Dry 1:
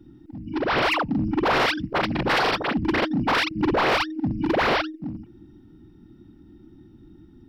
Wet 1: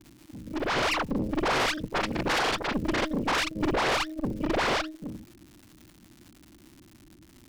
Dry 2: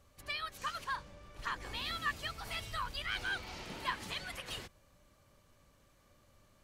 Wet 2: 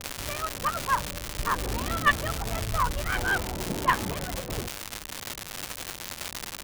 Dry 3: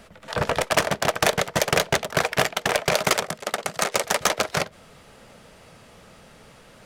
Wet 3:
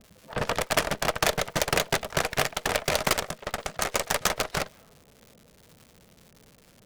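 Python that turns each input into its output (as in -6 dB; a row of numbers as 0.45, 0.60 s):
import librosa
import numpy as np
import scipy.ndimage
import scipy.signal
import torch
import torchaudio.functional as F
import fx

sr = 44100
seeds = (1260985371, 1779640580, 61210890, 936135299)

y = fx.env_lowpass(x, sr, base_hz=360.0, full_db=-23.0)
y = fx.cheby_harmonics(y, sr, harmonics=(4, 6), levels_db=(-7, -7), full_scale_db=-7.0)
y = fx.dmg_crackle(y, sr, seeds[0], per_s=270.0, level_db=-35.0)
y = y * 10.0 ** (-30 / 20.0) / np.sqrt(np.mean(np.square(y)))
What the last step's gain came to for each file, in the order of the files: -5.5, +16.5, -5.5 dB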